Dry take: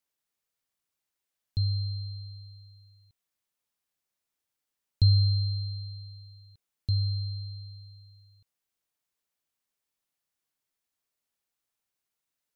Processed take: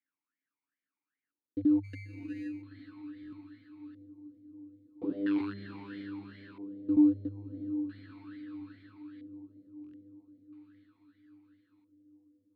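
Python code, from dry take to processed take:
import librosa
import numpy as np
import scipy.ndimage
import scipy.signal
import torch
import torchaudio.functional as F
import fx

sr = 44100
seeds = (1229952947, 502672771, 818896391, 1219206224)

y = fx.lower_of_two(x, sr, delay_ms=3.6, at=(5.03, 5.96), fade=0.02)
y = fx.echo_multitap(y, sr, ms=(80, 363), db=(-5.0, -6.0))
y = (np.mod(10.0 ** (20.5 / 20.0) * y + 1.0, 2.0) - 1.0) / 10.0 ** (20.5 / 20.0)
y = fx.echo_diffused(y, sr, ms=657, feedback_pct=62, wet_db=-10.0)
y = fx.filter_lfo_lowpass(y, sr, shape='square', hz=0.38, low_hz=540.0, high_hz=1700.0, q=3.1)
y = fx.sample_hold(y, sr, seeds[0], rate_hz=2200.0, jitter_pct=0, at=(1.83, 2.61), fade=0.02)
y = fx.buffer_glitch(y, sr, at_s=(3.21, 9.82), block=1024, repeats=4)
y = fx.vowel_sweep(y, sr, vowels='i-u', hz=2.5)
y = y * 10.0 ** (6.5 / 20.0)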